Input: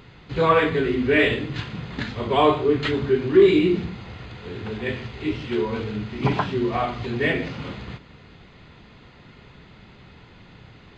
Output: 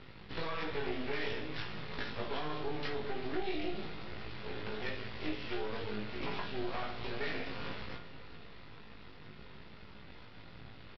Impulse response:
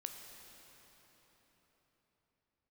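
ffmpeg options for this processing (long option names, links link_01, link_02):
-filter_complex "[0:a]bandreject=frequency=54.74:width_type=h:width=4,bandreject=frequency=109.48:width_type=h:width=4,bandreject=frequency=164.22:width_type=h:width=4,bandreject=frequency=218.96:width_type=h:width=4,bandreject=frequency=273.7:width_type=h:width=4,bandreject=frequency=328.44:width_type=h:width=4,bandreject=frequency=383.18:width_type=h:width=4,bandreject=frequency=437.92:width_type=h:width=4,bandreject=frequency=492.66:width_type=h:width=4,bandreject=frequency=547.4:width_type=h:width=4,alimiter=limit=-15dB:level=0:latency=1,acrossover=split=380|2900[link_01][link_02][link_03];[link_01]acompressor=threshold=-40dB:ratio=4[link_04];[link_02]acompressor=threshold=-34dB:ratio=4[link_05];[link_03]acompressor=threshold=-44dB:ratio=4[link_06];[link_04][link_05][link_06]amix=inputs=3:normalize=0,aresample=11025,aeval=exprs='max(val(0),0)':channel_layout=same,aresample=44100,asplit=2[link_07][link_08];[link_08]adelay=19,volume=-3.5dB[link_09];[link_07][link_09]amix=inputs=2:normalize=0,aecho=1:1:396|792|1188|1584|1980:0.141|0.0763|0.0412|0.0222|0.012[link_10];[1:a]atrim=start_sample=2205,atrim=end_sample=3528[link_11];[link_10][link_11]afir=irnorm=-1:irlink=0,volume=1dB"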